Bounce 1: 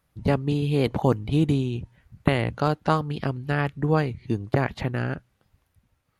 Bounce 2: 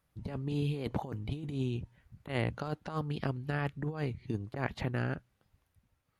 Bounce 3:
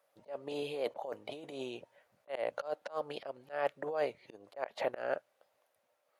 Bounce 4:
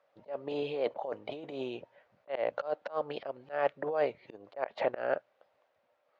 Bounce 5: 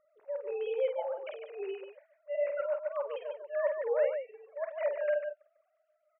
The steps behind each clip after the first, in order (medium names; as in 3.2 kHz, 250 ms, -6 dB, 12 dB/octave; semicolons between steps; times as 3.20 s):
compressor with a negative ratio -24 dBFS, ratio -0.5; trim -8.5 dB
resonant high-pass 580 Hz, resonance Q 4.9; slow attack 194 ms; trim +1 dB
distance through air 200 m; trim +4.5 dB
formants replaced by sine waves; on a send: multi-tap echo 49/147 ms -6.5/-7 dB